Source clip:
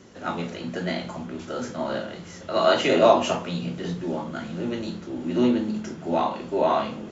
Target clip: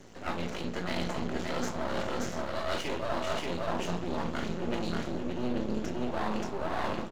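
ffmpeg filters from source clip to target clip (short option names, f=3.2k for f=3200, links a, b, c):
-af "dynaudnorm=f=100:g=17:m=9dB,aecho=1:1:268|580:0.133|0.631,areverse,acompressor=threshold=-26dB:ratio=12,areverse,aeval=exprs='max(val(0),0)':c=same,volume=1dB"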